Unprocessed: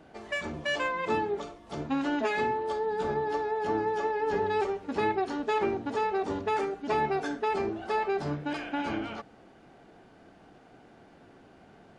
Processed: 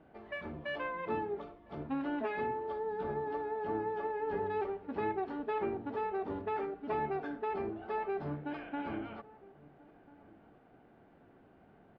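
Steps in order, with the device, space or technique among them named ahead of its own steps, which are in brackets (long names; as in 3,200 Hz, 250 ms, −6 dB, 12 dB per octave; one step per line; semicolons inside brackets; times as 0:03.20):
shout across a valley (high-frequency loss of the air 430 metres; slap from a distant wall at 230 metres, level −21 dB)
level −5.5 dB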